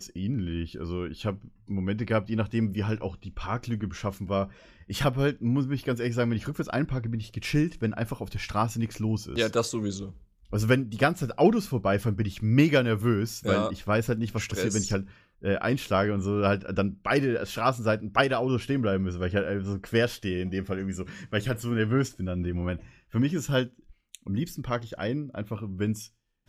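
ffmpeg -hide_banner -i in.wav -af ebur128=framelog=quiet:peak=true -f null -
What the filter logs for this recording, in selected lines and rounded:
Integrated loudness:
  I:         -28.1 LUFS
  Threshold: -38.3 LUFS
Loudness range:
  LRA:         5.6 LU
  Threshold: -48.0 LUFS
  LRA low:   -30.7 LUFS
  LRA high:  -25.1 LUFS
True peak:
  Peak:       -6.7 dBFS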